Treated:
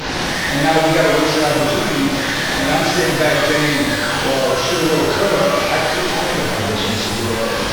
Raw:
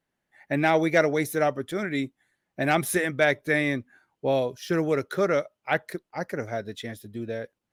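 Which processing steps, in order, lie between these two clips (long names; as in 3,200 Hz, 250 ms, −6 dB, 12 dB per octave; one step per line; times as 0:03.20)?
linear delta modulator 32 kbit/s, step −21.5 dBFS
leveller curve on the samples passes 1
reverb with rising layers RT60 1.7 s, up +12 semitones, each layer −8 dB, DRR −7 dB
level −3.5 dB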